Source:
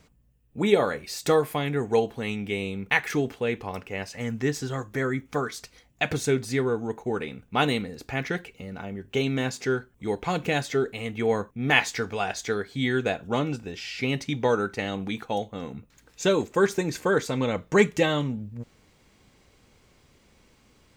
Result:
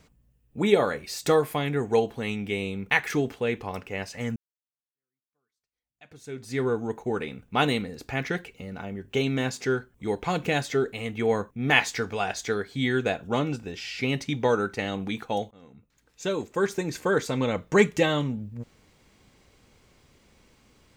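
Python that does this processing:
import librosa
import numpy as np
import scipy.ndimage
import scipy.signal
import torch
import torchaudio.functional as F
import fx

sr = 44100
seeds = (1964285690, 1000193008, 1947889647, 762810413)

y = fx.edit(x, sr, fx.fade_in_span(start_s=4.36, length_s=2.28, curve='exp'),
    fx.fade_in_from(start_s=15.51, length_s=1.81, floor_db=-20.0), tone=tone)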